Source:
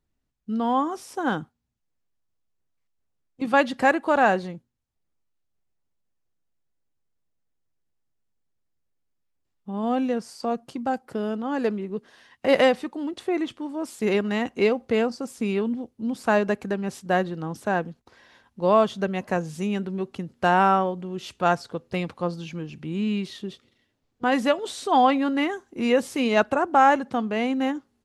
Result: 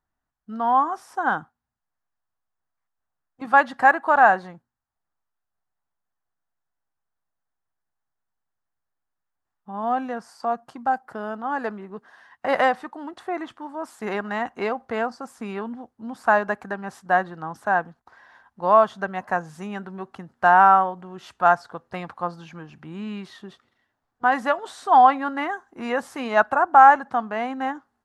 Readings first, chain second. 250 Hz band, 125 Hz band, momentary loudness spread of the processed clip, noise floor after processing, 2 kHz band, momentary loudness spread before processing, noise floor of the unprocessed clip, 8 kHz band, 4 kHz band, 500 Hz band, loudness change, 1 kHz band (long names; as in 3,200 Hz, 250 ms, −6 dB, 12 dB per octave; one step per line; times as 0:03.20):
−7.0 dB, −7.0 dB, 20 LU, −82 dBFS, +4.5 dB, 12 LU, −76 dBFS, can't be measured, −7.0 dB, −2.0 dB, +3.0 dB, +6.0 dB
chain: flat-topped bell 1,100 Hz +13 dB
level −7 dB